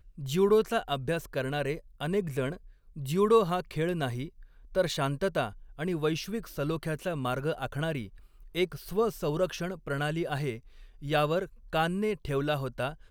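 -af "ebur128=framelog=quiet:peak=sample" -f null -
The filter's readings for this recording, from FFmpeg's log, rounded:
Integrated loudness:
  I:         -30.5 LUFS
  Threshold: -40.9 LUFS
Loudness range:
  LRA:         3.1 LU
  Threshold: -51.2 LUFS
  LRA low:   -32.8 LUFS
  LRA high:  -29.7 LUFS
Sample peak:
  Peak:      -11.6 dBFS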